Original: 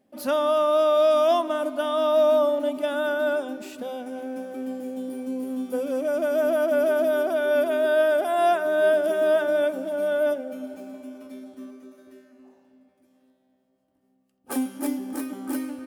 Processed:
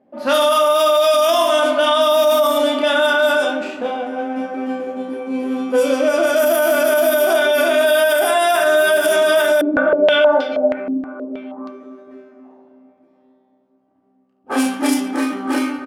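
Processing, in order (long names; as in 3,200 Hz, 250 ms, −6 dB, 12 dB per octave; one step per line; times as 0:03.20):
double-tracking delay 18 ms −12 dB
reverse bouncing-ball delay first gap 30 ms, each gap 1.4×, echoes 5
low-pass that shuts in the quiet parts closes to 860 Hz, open at −15.5 dBFS
spectral tilt +3.5 dB per octave
boost into a limiter +19 dB
0:09.61–0:11.69: low-pass on a step sequencer 6.3 Hz 310–4,400 Hz
level −6 dB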